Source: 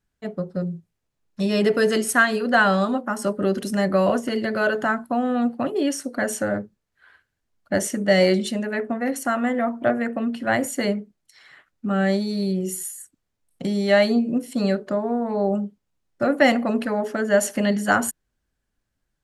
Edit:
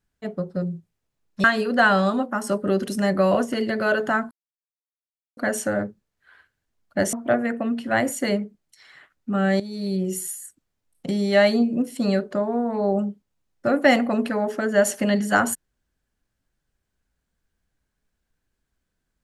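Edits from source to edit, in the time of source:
1.44–2.19 cut
5.06–6.12 mute
7.88–9.69 cut
12.16–12.57 fade in linear, from -13 dB

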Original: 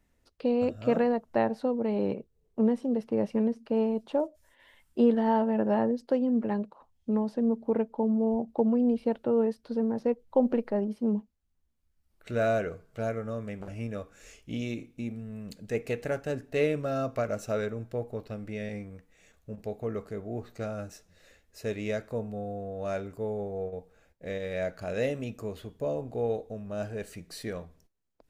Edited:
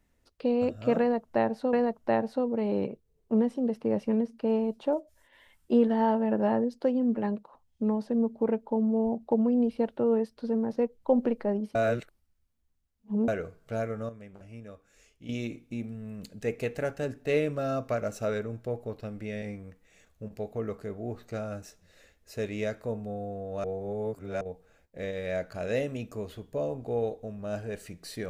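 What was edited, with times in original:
1–1.73 loop, 2 plays
11.02–12.55 reverse
13.36–14.56 gain -9.5 dB
22.91–23.68 reverse

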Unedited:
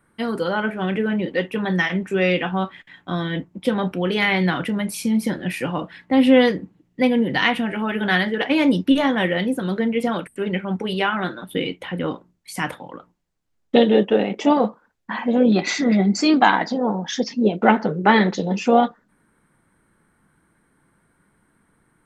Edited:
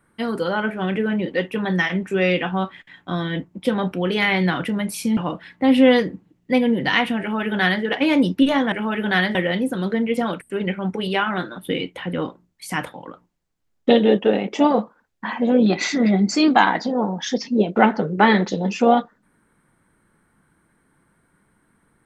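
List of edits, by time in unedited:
5.17–5.66 cut
7.69–8.32 copy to 9.21

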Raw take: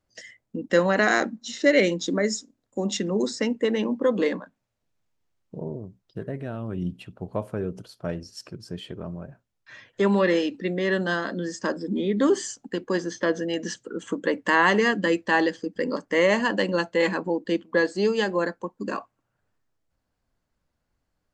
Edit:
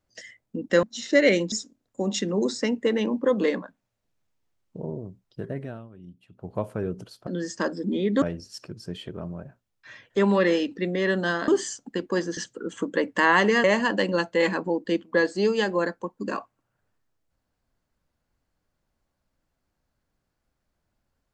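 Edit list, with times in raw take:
0.83–1.34 cut
2.03–2.3 cut
6.37–7.34 dip -16.5 dB, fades 0.30 s
11.31–12.26 move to 8.05
13.15–13.67 cut
14.94–16.24 cut

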